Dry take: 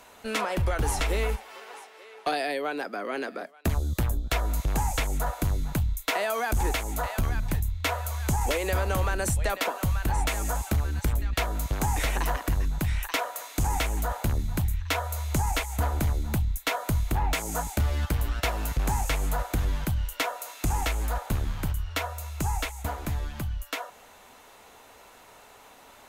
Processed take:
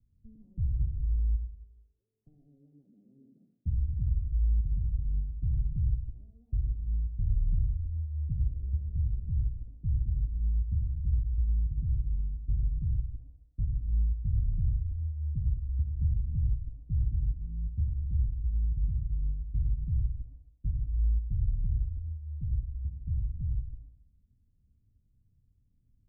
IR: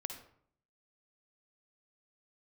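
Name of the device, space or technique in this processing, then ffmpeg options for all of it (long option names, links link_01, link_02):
club heard from the street: -filter_complex "[0:a]alimiter=limit=-21.5dB:level=0:latency=1,lowpass=frequency=140:width=0.5412,lowpass=frequency=140:width=1.3066[link_01];[1:a]atrim=start_sample=2205[link_02];[link_01][link_02]afir=irnorm=-1:irlink=0,volume=2dB"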